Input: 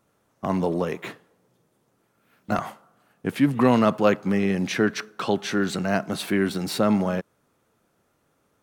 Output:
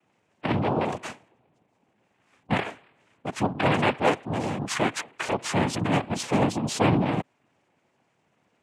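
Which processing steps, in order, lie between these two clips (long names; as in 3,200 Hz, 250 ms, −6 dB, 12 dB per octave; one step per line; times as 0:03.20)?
gate on every frequency bin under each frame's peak −25 dB strong
0:03.26–0:05.51: low-shelf EQ 270 Hz −10.5 dB
cochlear-implant simulation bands 4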